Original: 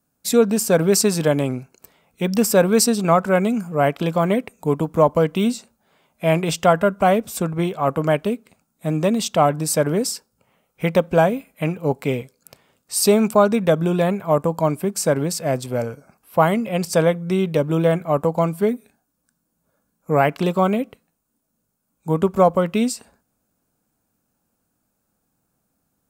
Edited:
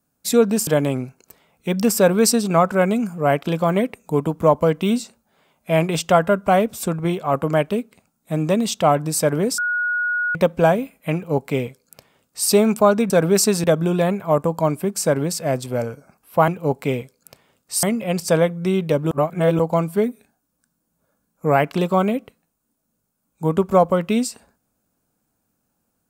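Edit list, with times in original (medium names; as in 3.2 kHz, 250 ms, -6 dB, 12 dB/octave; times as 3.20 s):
0.67–1.21 s: move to 13.64 s
10.12–10.89 s: bleep 1.45 kHz -18.5 dBFS
11.68–13.03 s: copy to 16.48 s
17.76–18.24 s: reverse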